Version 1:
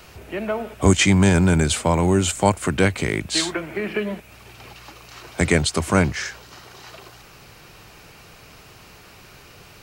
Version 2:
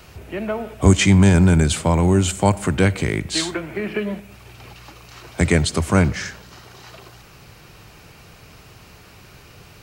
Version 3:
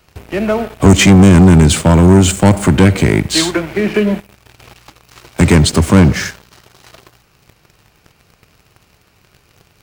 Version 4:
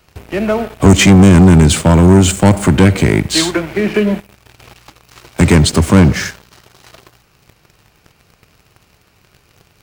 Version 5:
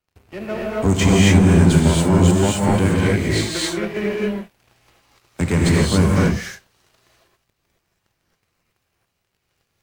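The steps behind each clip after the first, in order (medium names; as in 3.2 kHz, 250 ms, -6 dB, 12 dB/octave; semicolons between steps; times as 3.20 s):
peaking EQ 90 Hz +5.5 dB 2.7 oct; on a send at -19 dB: reverberation RT60 0.90 s, pre-delay 15 ms; on the sum: trim -1 dB
dynamic bell 250 Hz, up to +6 dB, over -27 dBFS, Q 0.76; waveshaping leveller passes 3; trim -2.5 dB
no audible change
power-law waveshaper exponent 1.4; gated-style reverb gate 300 ms rising, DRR -5 dB; trim -10 dB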